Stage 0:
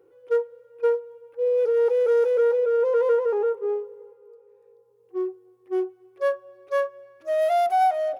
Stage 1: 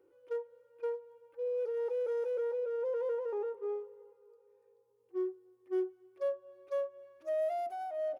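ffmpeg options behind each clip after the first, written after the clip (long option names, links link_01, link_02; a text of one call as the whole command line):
ffmpeg -i in.wav -filter_complex "[0:a]acrossover=split=570[link_01][link_02];[link_02]acompressor=threshold=-35dB:ratio=6[link_03];[link_01][link_03]amix=inputs=2:normalize=0,aecho=1:1:3.3:0.42,volume=-8.5dB" out.wav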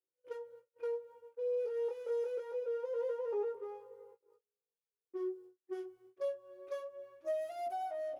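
ffmpeg -i in.wav -filter_complex "[0:a]acrossover=split=250|3000[link_01][link_02][link_03];[link_02]acompressor=threshold=-40dB:ratio=6[link_04];[link_01][link_04][link_03]amix=inputs=3:normalize=0,agate=range=-38dB:threshold=-59dB:ratio=16:detection=peak,flanger=delay=15.5:depth=7.8:speed=0.25,volume=6.5dB" out.wav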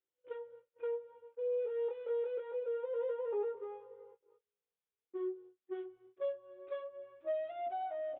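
ffmpeg -i in.wav -af "aresample=8000,aresample=44100" out.wav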